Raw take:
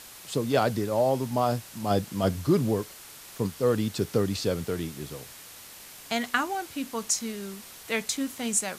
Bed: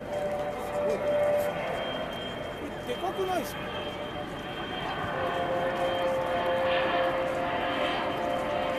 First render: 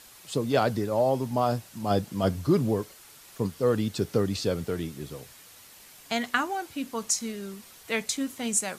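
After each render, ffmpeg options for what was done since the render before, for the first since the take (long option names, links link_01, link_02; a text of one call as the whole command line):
ffmpeg -i in.wav -af "afftdn=noise_reduction=6:noise_floor=-47" out.wav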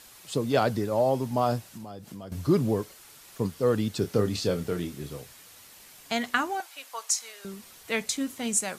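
ffmpeg -i in.wav -filter_complex "[0:a]asettb=1/sr,asplit=3[link_01][link_02][link_03];[link_01]atrim=end=1.704[link_04];[link_02]atrim=start=1.7:end=2.32,asetpts=PTS-STARTPTS,afade=type=in:duration=0.004:curve=qsin,afade=type=out:start_time=0.616:duration=0.004:curve=qsin,acompressor=threshold=-37dB:ratio=10:attack=3.2:release=140:knee=1:detection=peak[link_05];[link_03]atrim=start=2.316[link_06];[link_04][link_05]acrossfade=duration=0.004:curve1=hsin:curve2=qsin[link_07];[link_07][link_06]acrossfade=duration=0.004:curve1=qsin:curve2=hsin,asettb=1/sr,asplit=3[link_08][link_09][link_10];[link_08]atrim=end=4.004[link_11];[link_09]atrim=start=4:end=5.22,asetpts=PTS-STARTPTS,afade=type=in:duration=0.004:curve=qsin,afade=type=out:start_time=1.216:duration=0.004:curve=qsin,asplit=2[link_12][link_13];[link_13]adelay=28,volume=-8.5dB[link_14];[link_12][link_14]amix=inputs=2:normalize=0,atrim=end_sample=53802[link_15];[link_10]atrim=start=5.216[link_16];[link_11][link_15]acrossfade=duration=0.004:curve1=hsin:curve2=qsin[link_17];[link_17][link_16]acrossfade=duration=0.004:curve1=qsin:curve2=hsin,asettb=1/sr,asplit=3[link_18][link_19][link_20];[link_18]atrim=end=6.604[link_21];[link_19]atrim=start=6.6:end=7.45,asetpts=PTS-STARTPTS,afade=type=in:duration=0.004:curve=qsin,afade=type=out:start_time=0.846:duration=0.004:curve=qsin,highpass=frequency=640:width=0.5412,highpass=frequency=640:width=1.3066[link_22];[link_20]atrim=start=7.446[link_23];[link_21][link_22]acrossfade=duration=0.004:curve1=hsin:curve2=qsin[link_24];[link_24][link_23]acrossfade=duration=0.004:curve1=qsin:curve2=hsin" out.wav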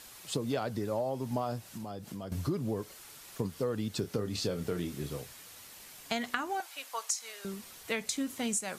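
ffmpeg -i in.wav -af "acompressor=threshold=-29dB:ratio=10" out.wav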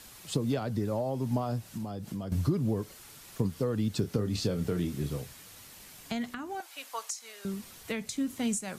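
ffmpeg -i in.wav -filter_complex "[0:a]acrossover=split=270[link_01][link_02];[link_01]acontrast=75[link_03];[link_02]alimiter=limit=-23dB:level=0:latency=1:release=479[link_04];[link_03][link_04]amix=inputs=2:normalize=0" out.wav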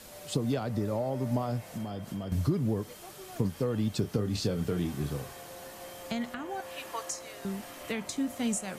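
ffmpeg -i in.wav -i bed.wav -filter_complex "[1:a]volume=-18dB[link_01];[0:a][link_01]amix=inputs=2:normalize=0" out.wav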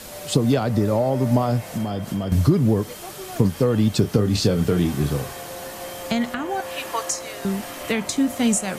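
ffmpeg -i in.wav -af "volume=11dB" out.wav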